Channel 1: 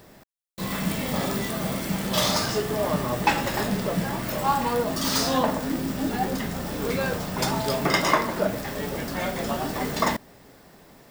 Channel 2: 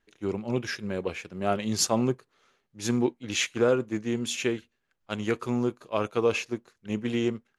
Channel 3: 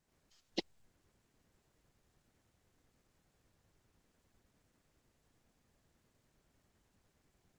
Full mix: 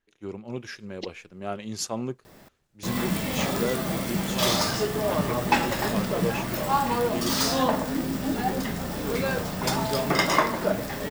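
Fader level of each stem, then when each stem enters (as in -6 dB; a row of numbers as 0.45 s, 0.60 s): -0.5 dB, -6.0 dB, +0.5 dB; 2.25 s, 0.00 s, 0.45 s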